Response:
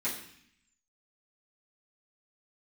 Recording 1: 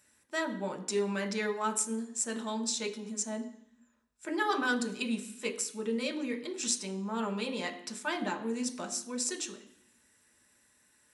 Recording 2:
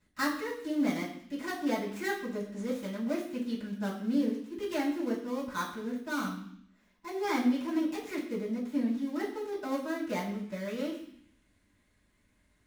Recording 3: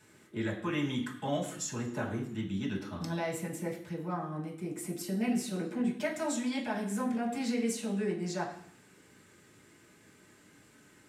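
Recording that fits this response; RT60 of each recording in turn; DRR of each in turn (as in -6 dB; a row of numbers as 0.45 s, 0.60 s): 2; 0.65 s, 0.60 s, 0.65 s; 3.0 dB, -11.0 dB, -4.5 dB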